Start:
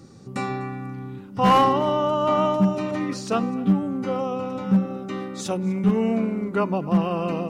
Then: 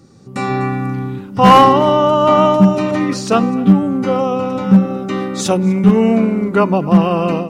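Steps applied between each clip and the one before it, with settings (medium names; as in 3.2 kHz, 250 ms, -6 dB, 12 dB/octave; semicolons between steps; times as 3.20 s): level rider gain up to 15 dB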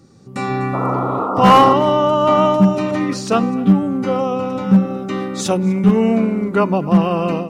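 painted sound noise, 0.73–1.74 s, 240–1400 Hz -18 dBFS; trim -2.5 dB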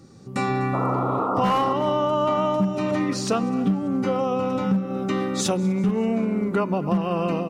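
compression 5:1, threshold -20 dBFS, peak gain reduction 13 dB; feedback delay 194 ms, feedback 58%, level -23 dB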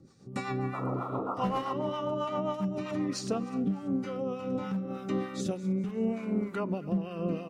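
harmonic tremolo 3.3 Hz, depth 70%, crossover 830 Hz; rotary cabinet horn 7.5 Hz, later 0.7 Hz, at 3.07 s; trim -4 dB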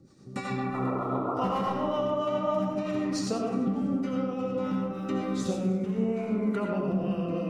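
algorithmic reverb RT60 1.2 s, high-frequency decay 0.35×, pre-delay 45 ms, DRR -0.5 dB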